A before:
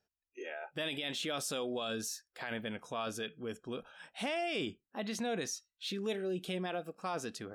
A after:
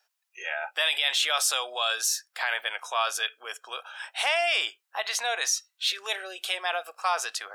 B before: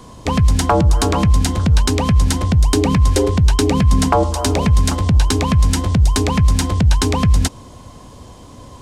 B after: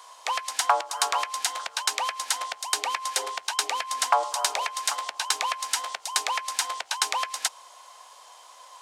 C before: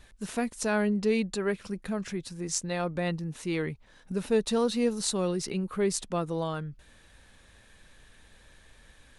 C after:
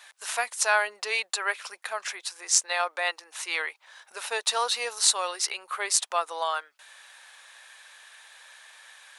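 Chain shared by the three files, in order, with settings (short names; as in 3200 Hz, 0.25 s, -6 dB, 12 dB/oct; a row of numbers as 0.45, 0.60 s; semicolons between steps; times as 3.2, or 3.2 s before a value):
inverse Chebyshev high-pass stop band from 170 Hz, stop band 70 dB; match loudness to -27 LUFS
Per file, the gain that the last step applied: +14.0, -3.0, +9.5 dB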